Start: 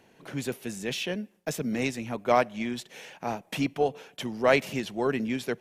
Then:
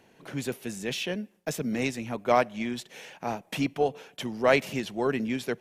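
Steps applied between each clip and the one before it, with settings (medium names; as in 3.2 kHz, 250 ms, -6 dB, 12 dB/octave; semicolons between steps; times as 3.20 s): no audible change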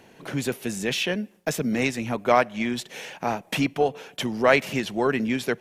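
dynamic bell 1.6 kHz, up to +4 dB, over -38 dBFS, Q 0.88; in parallel at +2.5 dB: compression, threshold -32 dBFS, peak gain reduction 16.5 dB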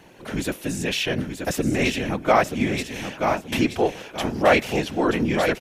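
whisper effect; feedback delay 929 ms, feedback 22%, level -7 dB; harmonic-percussive split harmonic +4 dB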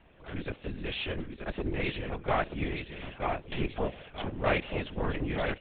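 valve stage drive 14 dB, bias 0.6; LPC vocoder at 8 kHz whisper; trim -6.5 dB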